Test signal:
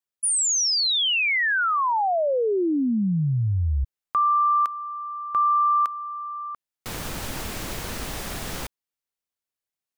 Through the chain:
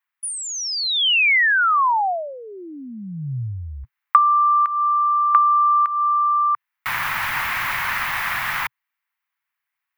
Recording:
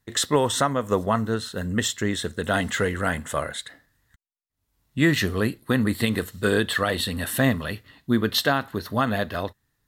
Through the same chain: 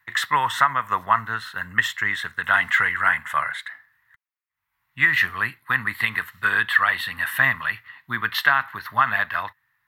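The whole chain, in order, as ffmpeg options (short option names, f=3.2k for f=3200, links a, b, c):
-filter_complex "[0:a]equalizer=f=125:t=o:w=1:g=11,equalizer=f=500:t=o:w=1:g=-11,equalizer=f=1k:t=o:w=1:g=11,equalizer=f=2k:t=o:w=1:g=11,equalizer=f=8k:t=o:w=1:g=-9,crystalizer=i=7.5:c=0,dynaudnorm=f=130:g=31:m=11.5dB,acrossover=split=540 2400:gain=0.224 1 0.158[a][b][c];[a][b][c]amix=inputs=3:normalize=0,acompressor=threshold=-17dB:ratio=6:attack=64:release=270:knee=1:detection=peak"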